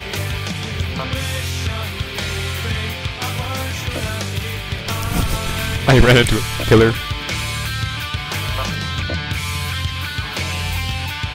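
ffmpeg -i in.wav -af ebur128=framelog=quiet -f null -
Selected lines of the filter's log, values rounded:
Integrated loudness:
  I:         -19.9 LUFS
  Threshold: -29.9 LUFS
Loudness range:
  LRA:         7.0 LU
  Threshold: -39.2 LUFS
  LRA low:   -23.1 LUFS
  LRA high:  -16.2 LUFS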